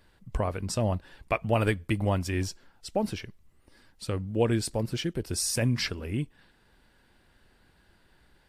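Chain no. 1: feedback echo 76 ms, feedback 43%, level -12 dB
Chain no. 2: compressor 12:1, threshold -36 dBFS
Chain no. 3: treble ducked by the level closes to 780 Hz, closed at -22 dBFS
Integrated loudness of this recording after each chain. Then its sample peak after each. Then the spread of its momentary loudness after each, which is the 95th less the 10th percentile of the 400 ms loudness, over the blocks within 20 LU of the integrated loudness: -29.5, -41.5, -31.0 LUFS; -12.5, -21.5, -14.5 dBFS; 10, 8, 11 LU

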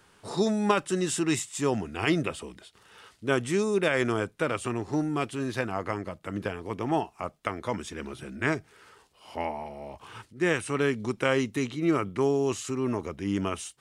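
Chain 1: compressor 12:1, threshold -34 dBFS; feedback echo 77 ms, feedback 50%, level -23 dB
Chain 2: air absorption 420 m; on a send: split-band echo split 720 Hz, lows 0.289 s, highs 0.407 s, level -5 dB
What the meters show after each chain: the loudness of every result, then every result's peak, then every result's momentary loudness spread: -39.5, -29.0 LUFS; -16.0, -10.5 dBFS; 7, 11 LU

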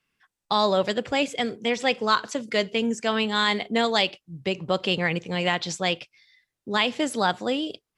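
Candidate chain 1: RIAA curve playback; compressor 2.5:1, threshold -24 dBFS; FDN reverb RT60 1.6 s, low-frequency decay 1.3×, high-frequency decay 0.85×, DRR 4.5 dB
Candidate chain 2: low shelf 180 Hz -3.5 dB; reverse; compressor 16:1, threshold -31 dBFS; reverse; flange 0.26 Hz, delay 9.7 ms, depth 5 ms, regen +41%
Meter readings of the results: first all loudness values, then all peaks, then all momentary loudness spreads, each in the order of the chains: -26.0, -40.0 LUFS; -11.5, -23.5 dBFS; 6, 3 LU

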